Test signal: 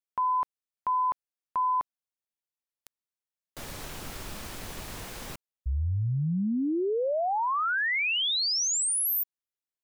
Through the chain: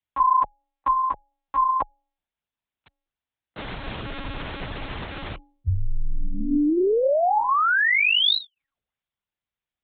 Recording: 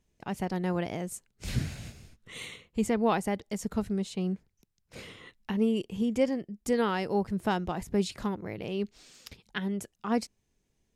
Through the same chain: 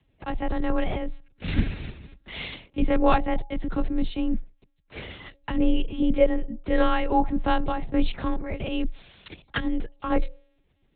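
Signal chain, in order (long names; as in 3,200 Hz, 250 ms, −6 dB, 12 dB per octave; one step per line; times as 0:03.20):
hum removal 164.1 Hz, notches 5
one-pitch LPC vocoder at 8 kHz 270 Hz
frequency shifter +19 Hz
level +7.5 dB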